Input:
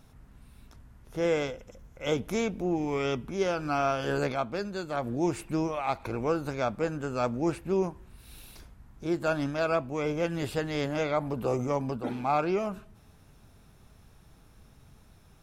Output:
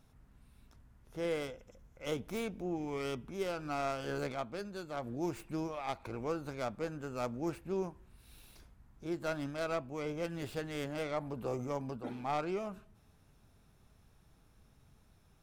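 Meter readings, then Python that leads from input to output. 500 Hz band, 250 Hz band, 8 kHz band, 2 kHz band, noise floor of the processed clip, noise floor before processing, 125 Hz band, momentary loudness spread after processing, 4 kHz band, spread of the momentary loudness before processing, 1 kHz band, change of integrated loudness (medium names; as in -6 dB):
-8.5 dB, -8.5 dB, -7.5 dB, -8.5 dB, -66 dBFS, -57 dBFS, -8.5 dB, 6 LU, -7.0 dB, 6 LU, -8.5 dB, -8.5 dB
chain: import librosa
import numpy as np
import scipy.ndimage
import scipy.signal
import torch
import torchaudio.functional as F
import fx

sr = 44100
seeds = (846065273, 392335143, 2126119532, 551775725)

y = fx.tracing_dist(x, sr, depth_ms=0.1)
y = y * librosa.db_to_amplitude(-8.5)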